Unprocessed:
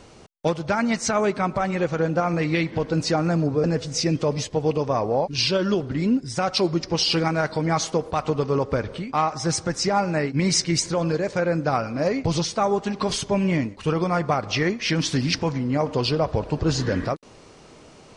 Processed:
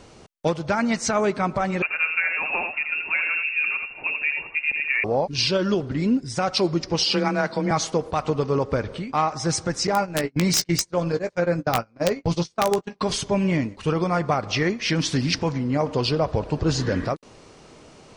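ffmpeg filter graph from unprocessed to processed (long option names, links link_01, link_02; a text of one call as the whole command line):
ffmpeg -i in.wav -filter_complex "[0:a]asettb=1/sr,asplit=3[link_01][link_02][link_03];[link_01]atrim=end=1.824[link_04];[link_02]atrim=start=1.82:end=5.04,asetpts=PTS-STARTPTS,afade=type=in:duration=0.004:curve=qsin,afade=type=out:start_time=3.216:duration=0.004:curve=qsin,highpass=frequency=380:poles=1,aecho=1:1:82:0.501,atrim=end_sample=142002,lowpass=frequency=2500:width_type=q:width=0.5098,lowpass=frequency=2500:width_type=q:width=0.6013,lowpass=frequency=2500:width_type=q:width=0.9,lowpass=frequency=2500:width_type=q:width=2.563,afreqshift=-2900[link_05];[link_03]atrim=start=5.036[link_06];[link_04][link_05]acrossfade=duration=0.004:curve1=hsin:curve2=qsin[link_07];[link_07][link_06]acrossfade=duration=0.004:curve1=qsin:curve2=hsin,asettb=1/sr,asplit=3[link_08][link_09][link_10];[link_08]atrim=end=7.054[link_11];[link_09]atrim=start=7.05:end=7.71,asetpts=PTS-STARTPTS,afade=type=in:duration=0.004:curve=qsin,afade=type=out:start_time=0.656:duration=0.004:curve=qsin,afreqshift=21,highpass=100,lowpass=7700[link_12];[link_10]atrim=start=7.706[link_13];[link_11][link_12]acrossfade=duration=0.004:curve1=hsin:curve2=qsin[link_14];[link_14][link_13]acrossfade=duration=0.004:curve1=qsin:curve2=hsin,asettb=1/sr,asplit=3[link_15][link_16][link_17];[link_15]atrim=end=9.874[link_18];[link_16]atrim=start=9.87:end=13.01,asetpts=PTS-STARTPTS,afade=type=in:duration=0.004:curve=qsin,afade=type=out:start_time=3.136:duration=0.004:curve=qsin,agate=range=-30dB:threshold=-24dB:ratio=16:release=100:detection=peak,aeval=exprs='(mod(3.76*val(0)+1,2)-1)/3.76':channel_layout=same,asplit=2[link_19][link_20];[link_20]adelay=17,volume=-11dB[link_21];[link_19][link_21]amix=inputs=2:normalize=0,atrim=end_sample=138474[link_22];[link_17]atrim=start=13.006[link_23];[link_18][link_22]acrossfade=duration=0.004:curve1=hsin:curve2=qsin[link_24];[link_24][link_23]acrossfade=duration=0.004:curve1=qsin:curve2=hsin" out.wav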